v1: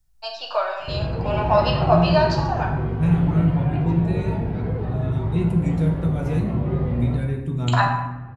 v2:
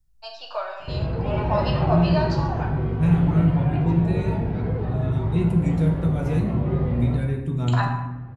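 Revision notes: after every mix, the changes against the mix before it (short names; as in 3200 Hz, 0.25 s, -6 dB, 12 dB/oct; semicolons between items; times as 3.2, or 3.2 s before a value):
first voice -6.5 dB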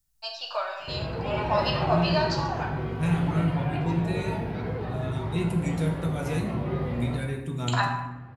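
master: add tilt +2.5 dB/oct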